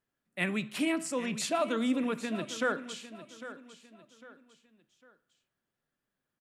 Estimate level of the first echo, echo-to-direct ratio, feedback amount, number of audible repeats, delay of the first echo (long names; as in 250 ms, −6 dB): −14.0 dB, −13.5 dB, 36%, 3, 802 ms